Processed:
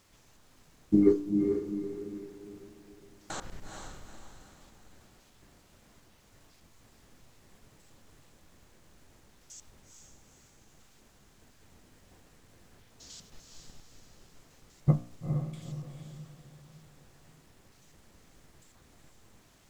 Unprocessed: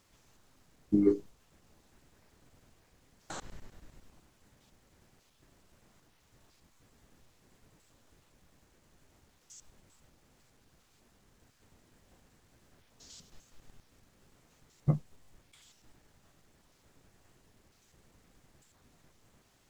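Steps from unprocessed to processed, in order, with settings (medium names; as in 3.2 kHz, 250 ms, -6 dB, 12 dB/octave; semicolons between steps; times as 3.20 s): de-hum 59.15 Hz, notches 28; on a send: echo that smears into a reverb 450 ms, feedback 41%, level -5 dB; on the sum: trim +4 dB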